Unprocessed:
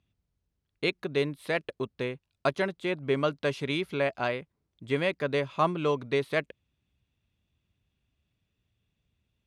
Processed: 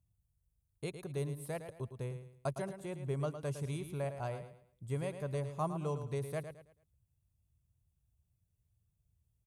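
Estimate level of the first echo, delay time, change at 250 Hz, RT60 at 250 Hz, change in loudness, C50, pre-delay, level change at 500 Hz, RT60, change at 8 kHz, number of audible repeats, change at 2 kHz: −9.5 dB, 109 ms, −9.5 dB, no reverb audible, −10.0 dB, no reverb audible, no reverb audible, −11.0 dB, no reverb audible, can't be measured, 3, −19.0 dB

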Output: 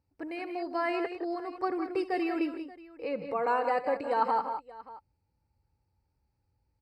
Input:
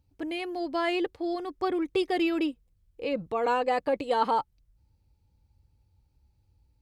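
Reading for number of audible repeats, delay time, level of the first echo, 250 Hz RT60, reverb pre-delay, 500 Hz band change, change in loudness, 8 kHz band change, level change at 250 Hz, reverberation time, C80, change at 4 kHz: 3, 70 ms, −16.0 dB, no reverb audible, no reverb audible, −3.0 dB, −2.5 dB, can't be measured, −4.0 dB, no reverb audible, no reverb audible, −10.5 dB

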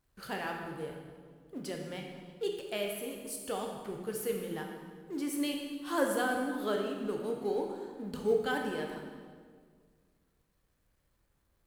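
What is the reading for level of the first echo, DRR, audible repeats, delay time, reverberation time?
no echo audible, 1.0 dB, no echo audible, no echo audible, 1.8 s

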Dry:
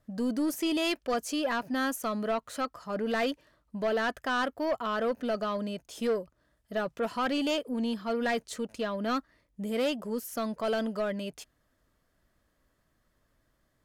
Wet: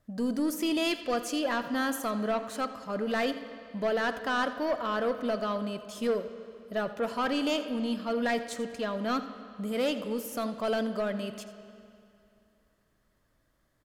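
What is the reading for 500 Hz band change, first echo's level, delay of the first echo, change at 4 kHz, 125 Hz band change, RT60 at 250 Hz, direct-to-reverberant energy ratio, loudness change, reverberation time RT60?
+0.5 dB, −16.5 dB, 85 ms, +0.5 dB, can't be measured, 2.6 s, 9.5 dB, +0.5 dB, 2.6 s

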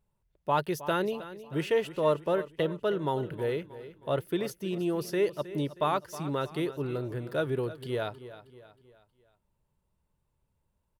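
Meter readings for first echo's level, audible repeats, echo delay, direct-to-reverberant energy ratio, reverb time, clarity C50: −15.0 dB, 3, 316 ms, no reverb audible, no reverb audible, no reverb audible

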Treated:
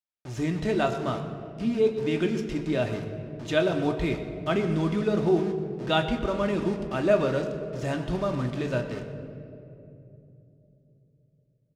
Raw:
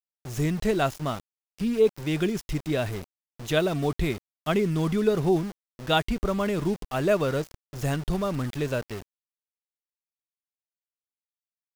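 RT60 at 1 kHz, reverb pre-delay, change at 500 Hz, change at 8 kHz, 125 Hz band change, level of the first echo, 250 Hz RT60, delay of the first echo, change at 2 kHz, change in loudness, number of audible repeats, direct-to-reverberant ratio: 2.4 s, 3 ms, +0.5 dB, can't be measured, −1.5 dB, −16.5 dB, 4.0 s, 123 ms, −0.5 dB, −0.5 dB, 1, 3.0 dB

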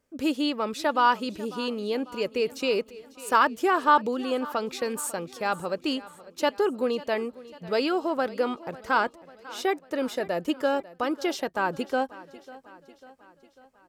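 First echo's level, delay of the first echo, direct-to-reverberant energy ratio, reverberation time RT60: −19.0 dB, 546 ms, no reverb audible, no reverb audible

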